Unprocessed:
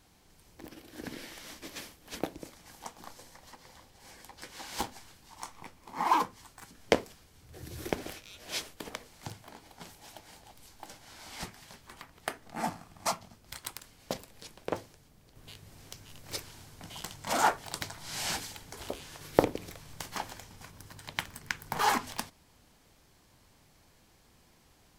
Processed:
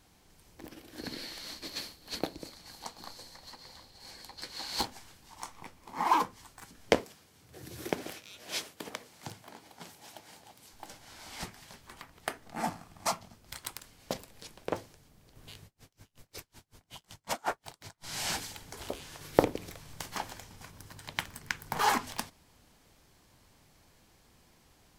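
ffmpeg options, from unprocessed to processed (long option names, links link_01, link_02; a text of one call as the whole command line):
ffmpeg -i in.wav -filter_complex "[0:a]asettb=1/sr,asplit=3[link_01][link_02][link_03];[link_01]atrim=end=0.984[link_04];[link_02]atrim=start=0.98:end=4.85,asetpts=PTS-STARTPTS,afade=type=in:duration=0.004:curve=qsin,afade=type=out:start_time=3.866:duration=0.004:curve=qsin,equalizer=frequency=4300:width=5.5:gain=15[link_05];[link_03]atrim=start=4.846[link_06];[link_04][link_05]acrossfade=duration=0.004:curve1=hsin:curve2=qsin[link_07];[link_07][link_06]acrossfade=duration=0.004:curve1=qsin:curve2=hsin,asettb=1/sr,asplit=3[link_08][link_09][link_10];[link_08]atrim=end=7.004[link_11];[link_09]atrim=start=7:end=10.73,asetpts=PTS-STARTPTS,afade=type=in:duration=0.004:curve=qsin,afade=type=out:start_time=3.726:duration=0.004:curve=qsin,highpass=120[link_12];[link_10]atrim=start=10.726[link_13];[link_11][link_12]acrossfade=duration=0.004:curve1=hsin:curve2=qsin[link_14];[link_14][link_13]acrossfade=duration=0.004:curve1=qsin:curve2=hsin,asettb=1/sr,asplit=3[link_15][link_16][link_17];[link_15]atrim=end=15.654[link_18];[link_16]atrim=start=15.65:end=18.04,asetpts=PTS-STARTPTS,afade=type=in:duration=0.004:curve=qsin,afade=type=out:start_time=2.386:duration=0.004:curve=qsin,aeval=exprs='val(0)*pow(10,-37*(0.5-0.5*cos(2*PI*5.4*n/s))/20)':channel_layout=same[link_19];[link_17]atrim=start=18.036[link_20];[link_18][link_19]acrossfade=duration=0.004:curve1=hsin:curve2=qsin[link_21];[link_21][link_20]acrossfade=duration=0.004:curve1=qsin:curve2=hsin" out.wav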